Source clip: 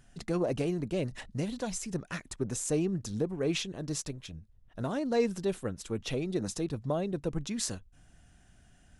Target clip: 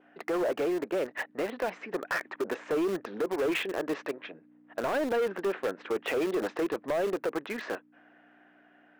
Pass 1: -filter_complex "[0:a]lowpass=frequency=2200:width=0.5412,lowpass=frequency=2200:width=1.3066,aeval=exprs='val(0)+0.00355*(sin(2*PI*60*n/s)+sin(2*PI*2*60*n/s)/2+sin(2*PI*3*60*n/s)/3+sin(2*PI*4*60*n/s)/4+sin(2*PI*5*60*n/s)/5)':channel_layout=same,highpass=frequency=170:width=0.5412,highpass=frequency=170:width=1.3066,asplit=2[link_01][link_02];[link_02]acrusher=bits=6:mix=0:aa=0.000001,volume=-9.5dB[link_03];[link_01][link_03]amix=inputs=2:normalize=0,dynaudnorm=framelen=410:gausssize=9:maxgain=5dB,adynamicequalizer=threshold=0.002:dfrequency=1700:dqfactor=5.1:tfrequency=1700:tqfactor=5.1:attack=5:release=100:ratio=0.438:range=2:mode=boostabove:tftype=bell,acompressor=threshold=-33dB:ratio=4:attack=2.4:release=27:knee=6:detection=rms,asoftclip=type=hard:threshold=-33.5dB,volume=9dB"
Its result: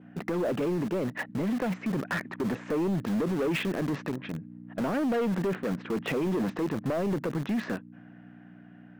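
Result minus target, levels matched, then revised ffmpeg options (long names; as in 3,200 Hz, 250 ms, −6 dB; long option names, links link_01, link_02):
125 Hz band +15.5 dB
-filter_complex "[0:a]lowpass=frequency=2200:width=0.5412,lowpass=frequency=2200:width=1.3066,aeval=exprs='val(0)+0.00355*(sin(2*PI*60*n/s)+sin(2*PI*2*60*n/s)/2+sin(2*PI*3*60*n/s)/3+sin(2*PI*4*60*n/s)/4+sin(2*PI*5*60*n/s)/5)':channel_layout=same,highpass=frequency=380:width=0.5412,highpass=frequency=380:width=1.3066,asplit=2[link_01][link_02];[link_02]acrusher=bits=6:mix=0:aa=0.000001,volume=-9.5dB[link_03];[link_01][link_03]amix=inputs=2:normalize=0,dynaudnorm=framelen=410:gausssize=9:maxgain=5dB,adynamicequalizer=threshold=0.002:dfrequency=1700:dqfactor=5.1:tfrequency=1700:tqfactor=5.1:attack=5:release=100:ratio=0.438:range=2:mode=boostabove:tftype=bell,acompressor=threshold=-33dB:ratio=4:attack=2.4:release=27:knee=6:detection=rms,asoftclip=type=hard:threshold=-33.5dB,volume=9dB"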